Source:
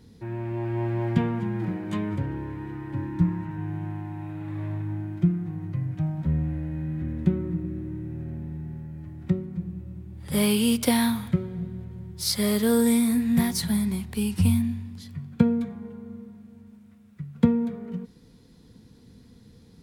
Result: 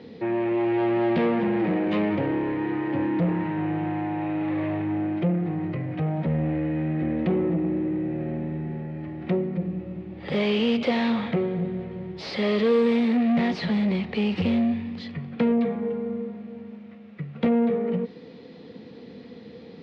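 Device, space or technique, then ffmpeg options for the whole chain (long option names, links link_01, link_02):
overdrive pedal into a guitar cabinet: -filter_complex "[0:a]asplit=2[link_01][link_02];[link_02]highpass=frequency=720:poles=1,volume=35dB,asoftclip=type=tanh:threshold=-4dB[link_03];[link_01][link_03]amix=inputs=2:normalize=0,lowpass=frequency=1900:poles=1,volume=-6dB,highpass=110,equalizer=frequency=120:width_type=q:width=4:gain=-7,equalizer=frequency=500:width_type=q:width=4:gain=5,equalizer=frequency=1000:width_type=q:width=4:gain=-8,equalizer=frequency=1500:width_type=q:width=4:gain=-9,equalizer=frequency=3500:width_type=q:width=4:gain=-3,lowpass=frequency=3900:width=0.5412,lowpass=frequency=3900:width=1.3066,volume=-9dB"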